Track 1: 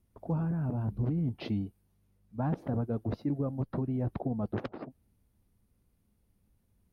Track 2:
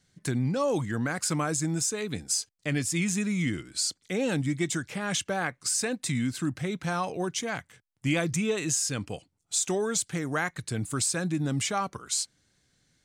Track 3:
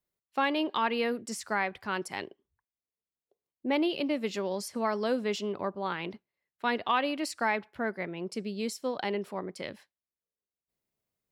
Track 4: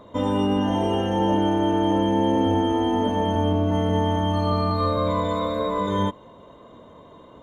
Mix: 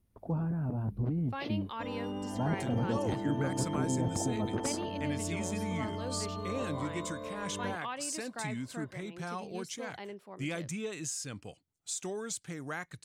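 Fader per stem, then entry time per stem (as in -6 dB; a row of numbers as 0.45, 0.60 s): -1.5, -10.0, -12.0, -16.5 dB; 0.00, 2.35, 0.95, 1.65 s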